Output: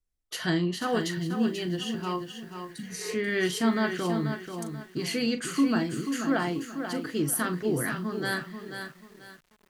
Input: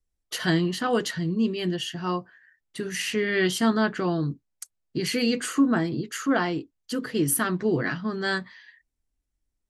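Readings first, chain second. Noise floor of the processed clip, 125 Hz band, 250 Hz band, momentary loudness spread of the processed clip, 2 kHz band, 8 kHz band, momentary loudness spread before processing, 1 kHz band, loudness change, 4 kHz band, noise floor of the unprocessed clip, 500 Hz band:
-65 dBFS, -3.0 dB, -2.5 dB, 13 LU, -3.0 dB, -3.0 dB, 11 LU, -3.0 dB, -3.0 dB, -3.5 dB, -80 dBFS, -3.0 dB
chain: spectral replace 2.47–3.10 s, 280–3600 Hz both; doubling 40 ms -11.5 dB; bit-crushed delay 486 ms, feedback 35%, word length 8-bit, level -7.5 dB; trim -4 dB

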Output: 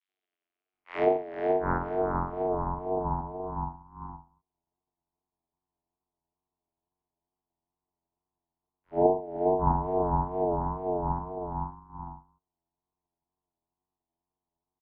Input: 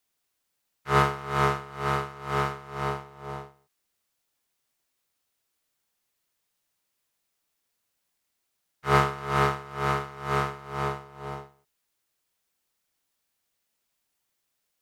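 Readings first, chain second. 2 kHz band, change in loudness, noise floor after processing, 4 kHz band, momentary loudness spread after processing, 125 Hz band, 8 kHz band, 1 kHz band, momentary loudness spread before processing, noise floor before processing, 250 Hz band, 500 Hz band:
under -10 dB, -1.5 dB, under -85 dBFS, under -20 dB, 18 LU, -3.5 dB, under -30 dB, -2.0 dB, 16 LU, -79 dBFS, +3.0 dB, +4.5 dB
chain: square wave that keeps the level; peaking EQ 970 Hz -14.5 dB 0.44 oct; vocoder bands 8, saw 92.5 Hz; three bands offset in time highs, lows, mids 70/730 ms, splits 290/1400 Hz; low-pass sweep 2.6 kHz -> 450 Hz, 0.22–3.02 s; ring modulator 530 Hz; wow and flutter 74 cents

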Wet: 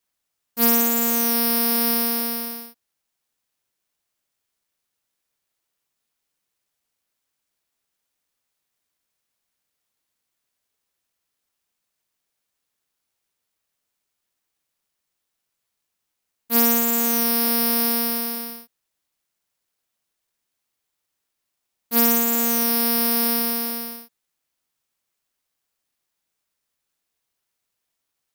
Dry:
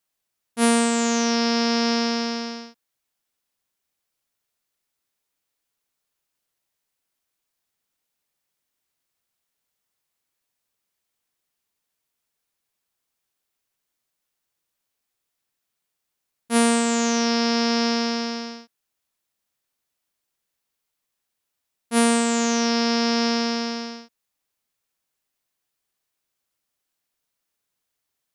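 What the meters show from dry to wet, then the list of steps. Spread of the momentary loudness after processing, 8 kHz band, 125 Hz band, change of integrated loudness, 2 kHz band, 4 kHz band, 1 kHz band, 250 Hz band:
12 LU, +1.0 dB, no reading, +3.0 dB, -4.0 dB, -3.5 dB, -4.0 dB, -4.0 dB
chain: careless resampling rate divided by 3×, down none, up zero stuff; trim -4 dB

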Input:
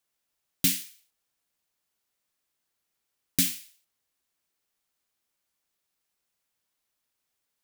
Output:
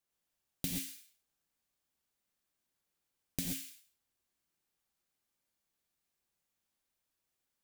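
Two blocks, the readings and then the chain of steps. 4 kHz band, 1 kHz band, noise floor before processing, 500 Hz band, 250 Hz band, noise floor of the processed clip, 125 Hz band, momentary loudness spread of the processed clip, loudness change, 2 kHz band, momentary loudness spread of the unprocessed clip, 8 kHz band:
-12.5 dB, no reading, -82 dBFS, -3.5 dB, -8.0 dB, under -85 dBFS, -6.0 dB, 12 LU, -13.0 dB, -12.0 dB, 14 LU, -12.5 dB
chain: bass shelf 390 Hz +7 dB; compression, threshold -26 dBFS, peak gain reduction 9.5 dB; gated-style reverb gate 150 ms rising, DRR 0 dB; trim -8 dB

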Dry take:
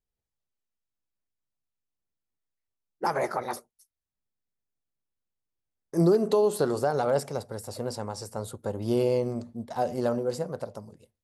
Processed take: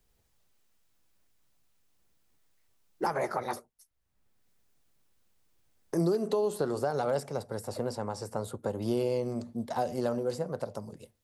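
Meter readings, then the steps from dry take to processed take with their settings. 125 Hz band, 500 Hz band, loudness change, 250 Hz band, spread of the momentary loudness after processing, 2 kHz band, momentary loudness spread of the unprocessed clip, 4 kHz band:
-4.0 dB, -4.5 dB, -4.0 dB, -4.0 dB, 9 LU, -3.0 dB, 14 LU, -3.5 dB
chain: three bands compressed up and down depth 70%; trim -4 dB

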